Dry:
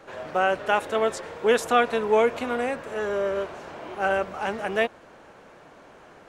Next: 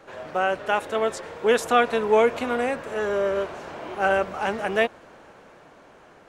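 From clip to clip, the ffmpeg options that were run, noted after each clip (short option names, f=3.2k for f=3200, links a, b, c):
-af "dynaudnorm=f=340:g=9:m=4dB,volume=-1dB"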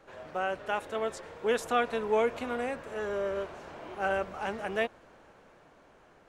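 -af "lowshelf=f=64:g=9.5,volume=-8.5dB"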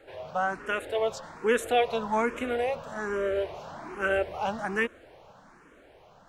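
-filter_complex "[0:a]asplit=2[a][b];[b]afreqshift=1.2[c];[a][c]amix=inputs=2:normalize=1,volume=6.5dB"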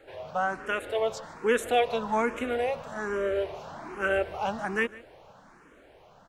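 -af "aecho=1:1:150:0.0944"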